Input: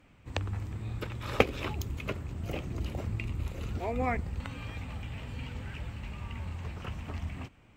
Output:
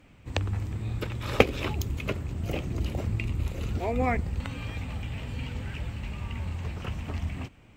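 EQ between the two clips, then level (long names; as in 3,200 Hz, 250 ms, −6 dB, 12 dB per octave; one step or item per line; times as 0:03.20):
parametric band 1,200 Hz −3 dB 1.4 octaves
+5.0 dB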